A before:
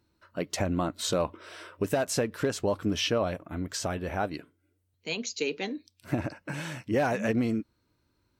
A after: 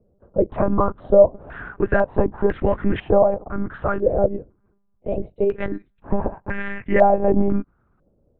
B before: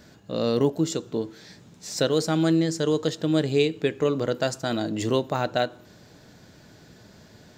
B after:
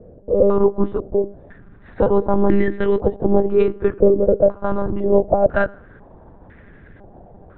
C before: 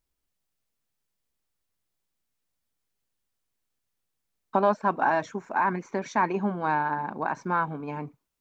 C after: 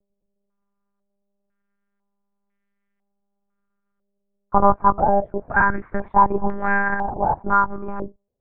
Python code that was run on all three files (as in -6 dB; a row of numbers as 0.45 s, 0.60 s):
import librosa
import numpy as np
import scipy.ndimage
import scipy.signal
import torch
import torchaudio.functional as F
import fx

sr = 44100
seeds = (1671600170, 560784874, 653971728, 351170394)

y = fx.lpc_monotone(x, sr, seeds[0], pitch_hz=200.0, order=8)
y = fx.tilt_shelf(y, sr, db=4.0, hz=680.0)
y = fx.filter_held_lowpass(y, sr, hz=2.0, low_hz=540.0, high_hz=1900.0)
y = librosa.util.normalize(y) * 10.0 ** (-1.5 / 20.0)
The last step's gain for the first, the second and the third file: +6.0 dB, +3.5 dB, +3.0 dB